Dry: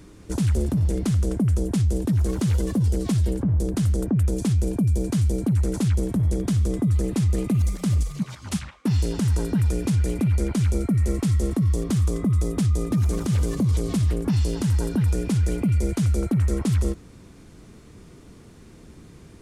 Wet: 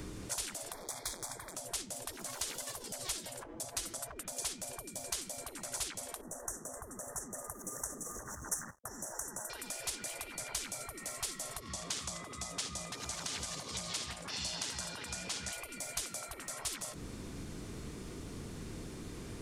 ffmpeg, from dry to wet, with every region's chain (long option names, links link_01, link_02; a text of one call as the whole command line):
ffmpeg -i in.wav -filter_complex "[0:a]asettb=1/sr,asplit=3[link_01][link_02][link_03];[link_01]atrim=end=0.724[link_04];[link_02]atrim=start=0.72:end=1.55,asetpts=PTS-STARTPTS,afade=type=in:duration=0.004:curve=qsin,afade=type=out:start_time=0.826:duration=0.004:curve=qsin,asoftclip=type=hard:threshold=-22.5dB,asuperstop=centerf=2800:order=20:qfactor=3.6[link_05];[link_03]atrim=start=1.546[link_06];[link_04][link_05]acrossfade=duration=0.004:curve1=hsin:curve2=qsin[link_07];[link_07][link_06]acrossfade=duration=0.004:curve1=qsin:curve2=hsin,asettb=1/sr,asplit=3[link_08][link_09][link_10];[link_08]atrim=end=3.414[link_11];[link_09]atrim=start=3.41:end=4.12,asetpts=PTS-STARTPTS,afade=type=in:duration=0.004:curve=qsin,afade=type=out:start_time=0.706:duration=0.004:curve=qsin,acompressor=threshold=-23dB:ratio=6:attack=3.2:release=140:knee=1:detection=peak,aecho=1:1:6:0.96,atrim=end_sample=31311[link_12];[link_10]atrim=start=4.116[link_13];[link_11][link_12]acrossfade=duration=0.004:curve1=hsin:curve2=qsin[link_14];[link_14][link_13]acrossfade=duration=0.004:curve1=qsin:curve2=hsin,asettb=1/sr,asplit=3[link_15][link_16][link_17];[link_15]atrim=end=6.214[link_18];[link_16]atrim=start=6.21:end=9.5,asetpts=PTS-STARTPTS,afade=type=in:duration=0.004:curve=qsin,afade=type=out:start_time=3.286:duration=0.004:curve=qsin,acompressor=threshold=-23dB:ratio=6:attack=3.2:release=140:knee=1:detection=peak,aeval=exprs='sgn(val(0))*max(abs(val(0))-0.00299,0)':channel_layout=same,asuperstop=centerf=3300:order=20:qfactor=0.86[link_19];[link_17]atrim=start=9.496[link_20];[link_18][link_19]acrossfade=duration=0.004:curve1=hsin:curve2=qsin[link_21];[link_21][link_20]acrossfade=duration=0.004:curve1=qsin:curve2=hsin,asettb=1/sr,asplit=3[link_22][link_23][link_24];[link_22]atrim=end=11.604[link_25];[link_23]atrim=start=11.6:end=15.53,asetpts=PTS-STARTPTS,afade=type=in:duration=0.004:curve=qsin,afade=type=out:start_time=3.926:duration=0.004:curve=qsin,tremolo=f=120:d=0.261,highpass=460,lowpass=6700,aecho=1:1:79:0.2,atrim=end_sample=173313[link_26];[link_24]atrim=start=15.526[link_27];[link_25][link_26]acrossfade=duration=0.004:curve1=hsin:curve2=qsin[link_28];[link_28][link_27]acrossfade=duration=0.004:curve1=qsin:curve2=hsin,acompressor=threshold=-26dB:ratio=2.5,afftfilt=real='re*lt(hypot(re,im),0.0398)':imag='im*lt(hypot(re,im),0.0398)':win_size=1024:overlap=0.75,acrossover=split=160|3000[link_29][link_30][link_31];[link_30]acompressor=threshold=-51dB:ratio=6[link_32];[link_29][link_32][link_31]amix=inputs=3:normalize=0,volume=5.5dB" out.wav